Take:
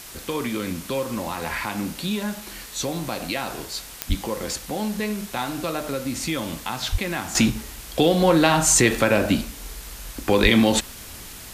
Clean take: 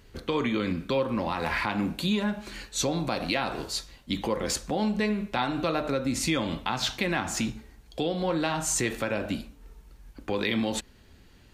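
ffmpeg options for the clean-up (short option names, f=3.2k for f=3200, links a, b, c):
-filter_complex "[0:a]adeclick=t=4,asplit=3[a][b][c];[a]afade=t=out:st=4.08:d=0.02[d];[b]highpass=f=140:w=0.5412,highpass=f=140:w=1.3066,afade=t=in:st=4.08:d=0.02,afade=t=out:st=4.2:d=0.02[e];[c]afade=t=in:st=4.2:d=0.02[f];[d][e][f]amix=inputs=3:normalize=0,asplit=3[g][h][i];[g]afade=t=out:st=6.91:d=0.02[j];[h]highpass=f=140:w=0.5412,highpass=f=140:w=1.3066,afade=t=in:st=6.91:d=0.02,afade=t=out:st=7.03:d=0.02[k];[i]afade=t=in:st=7.03:d=0.02[l];[j][k][l]amix=inputs=3:normalize=0,asplit=3[m][n][o];[m]afade=t=out:st=10.42:d=0.02[p];[n]highpass=f=140:w=0.5412,highpass=f=140:w=1.3066,afade=t=in:st=10.42:d=0.02,afade=t=out:st=10.54:d=0.02[q];[o]afade=t=in:st=10.54:d=0.02[r];[p][q][r]amix=inputs=3:normalize=0,afwtdn=0.011,asetnsamples=n=441:p=0,asendcmd='7.35 volume volume -10.5dB',volume=0dB"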